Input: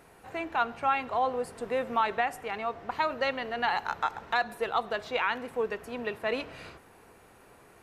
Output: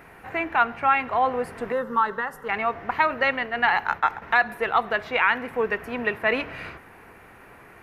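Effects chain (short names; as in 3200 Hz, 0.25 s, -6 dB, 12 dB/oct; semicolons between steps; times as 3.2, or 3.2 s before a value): 3.23–4.22 expander -32 dBFS; graphic EQ 500/2000/4000/8000 Hz -3/+7/-6/-11 dB; in parallel at -2 dB: vocal rider within 3 dB 0.5 s; 1.72–2.49 on the sum: fixed phaser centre 470 Hz, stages 8; gain +1.5 dB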